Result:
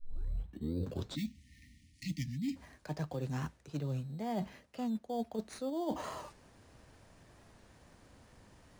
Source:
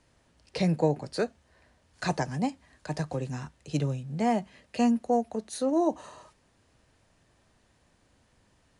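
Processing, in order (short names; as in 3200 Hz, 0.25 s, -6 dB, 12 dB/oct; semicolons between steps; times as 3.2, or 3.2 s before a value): tape start at the beginning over 1.37 s; in parallel at -5.5 dB: sample-and-hold 11×; on the sum: dynamic EQ 9600 Hz, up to -6 dB, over -56 dBFS, Q 1.3; spectral delete 1.15–2.56, 320–1800 Hz; reverse; compressor 8:1, threshold -37 dBFS, peak gain reduction 22 dB; reverse; record warp 45 rpm, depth 100 cents; gain +2.5 dB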